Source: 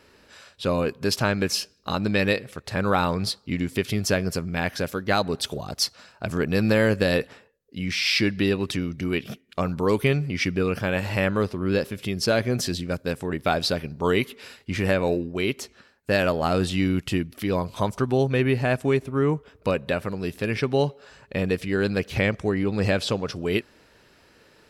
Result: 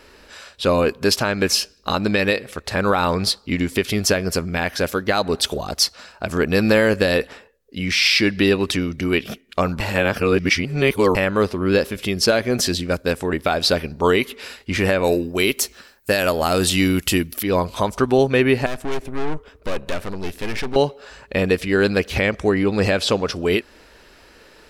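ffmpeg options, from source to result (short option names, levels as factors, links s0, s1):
-filter_complex "[0:a]asettb=1/sr,asplit=3[s0][s1][s2];[s0]atrim=end=15.044[s3];[s1]atrim=start=15.04:end=17.43,asetpts=PTS-STARTPTS,afade=t=in:d=0.004:c=qsin,afade=t=out:st=2.386:d=0.004:c=qsin,aemphasis=mode=production:type=50fm[s4];[s2]atrim=start=17.426[s5];[s3][s4]acrossfade=d=0.004:c1=hsin:c2=qsin[s6];[s6][s5]acrossfade=d=0.004:c1=qsin:c2=hsin,asettb=1/sr,asplit=3[s7][s8][s9];[s7]atrim=end=18.664[s10];[s8]atrim=start=18.66:end=20.76,asetpts=PTS-STARTPTS,afade=t=in:d=0.004:c=qsin,afade=t=out:st=2.096:d=0.004:c=qsin,aeval=exprs='(tanh(31.6*val(0)+0.55)-tanh(0.55))/31.6':c=same[s11];[s9]atrim=start=20.756[s12];[s10][s11]acrossfade=d=0.004:c1=hsin:c2=qsin[s13];[s13][s12]acrossfade=d=0.004:c1=qsin:c2=hsin,asplit=3[s14][s15][s16];[s14]atrim=end=9.802[s17];[s15]atrim=start=9.798:end=11.152,asetpts=PTS-STARTPTS,areverse[s18];[s16]atrim=start=11.148[s19];[s17][s18]acrossfade=d=0.004:c1=hsin:c2=hsin[s20];[s20][s19]acrossfade=d=0.004:c1=hsin:c2=hsin,equalizer=f=120:w=1:g=-12,alimiter=limit=0.211:level=0:latency=1:release=196,lowshelf=f=85:g=10.5,volume=2.51"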